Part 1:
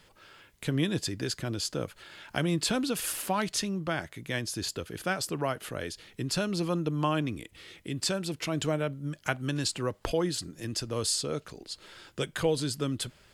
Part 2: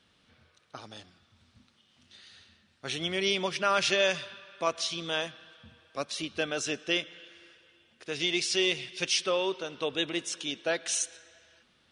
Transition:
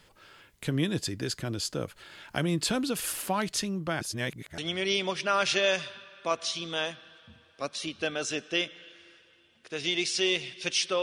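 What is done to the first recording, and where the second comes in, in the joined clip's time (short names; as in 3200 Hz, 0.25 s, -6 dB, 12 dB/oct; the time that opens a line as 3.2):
part 1
4.01–4.58 reverse
4.58 switch to part 2 from 2.94 s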